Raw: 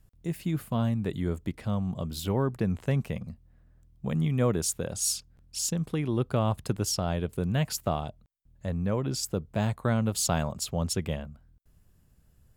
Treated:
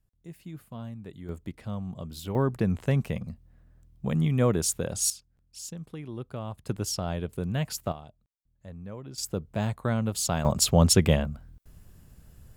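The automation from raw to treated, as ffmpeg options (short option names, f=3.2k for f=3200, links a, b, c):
-af "asetnsamples=n=441:p=0,asendcmd='1.29 volume volume -5dB;2.35 volume volume 2dB;5.1 volume volume -10dB;6.67 volume volume -2dB;7.92 volume volume -12dB;9.18 volume volume -1dB;10.45 volume volume 10dB',volume=-12dB"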